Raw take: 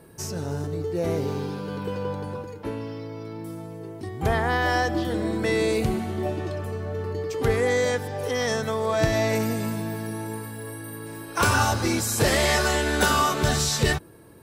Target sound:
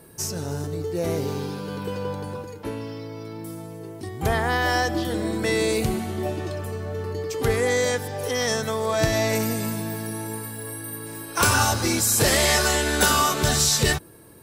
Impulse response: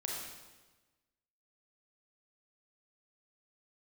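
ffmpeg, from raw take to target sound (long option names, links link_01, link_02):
-af "highshelf=frequency=4400:gain=8.5,aeval=exprs='0.447*(cos(1*acos(clip(val(0)/0.447,-1,1)))-cos(1*PI/2))+0.00447*(cos(4*acos(clip(val(0)/0.447,-1,1)))-cos(4*PI/2))':channel_layout=same"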